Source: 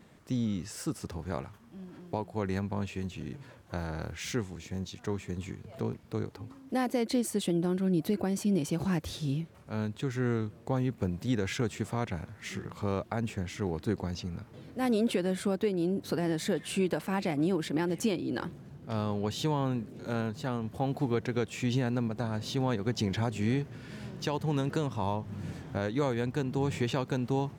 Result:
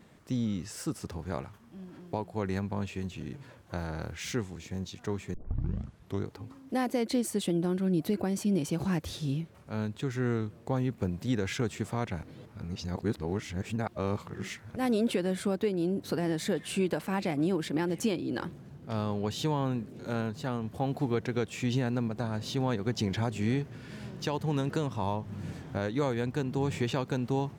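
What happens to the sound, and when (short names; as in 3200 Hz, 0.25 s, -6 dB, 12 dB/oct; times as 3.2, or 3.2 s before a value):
5.34 tape start 0.91 s
12.23–14.76 reverse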